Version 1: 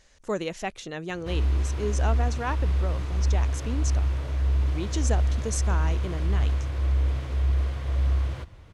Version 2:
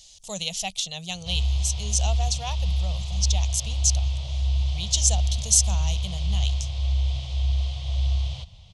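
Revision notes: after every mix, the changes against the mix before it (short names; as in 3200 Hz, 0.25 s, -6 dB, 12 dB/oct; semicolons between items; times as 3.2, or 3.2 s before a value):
background: add air absorption 120 m; master: add EQ curve 190 Hz 0 dB, 280 Hz -29 dB, 720 Hz +1 dB, 1600 Hz -19 dB, 3200 Hz +15 dB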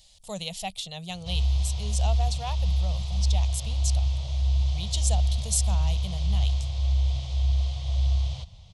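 speech: add bell 6200 Hz -13.5 dB 0.61 oct; master: add bell 2900 Hz -5 dB 0.75 oct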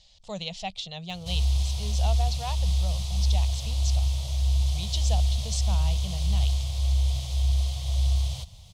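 speech: add LPF 6000 Hz 24 dB/oct; background: remove air absorption 120 m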